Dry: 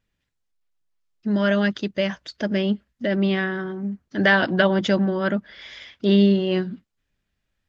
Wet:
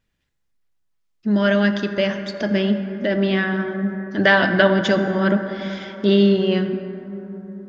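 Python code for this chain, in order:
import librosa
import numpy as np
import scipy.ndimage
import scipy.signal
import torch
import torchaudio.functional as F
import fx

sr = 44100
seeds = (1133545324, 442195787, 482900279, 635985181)

y = fx.rev_plate(x, sr, seeds[0], rt60_s=4.0, hf_ratio=0.3, predelay_ms=0, drr_db=7.0)
y = y * 10.0 ** (2.5 / 20.0)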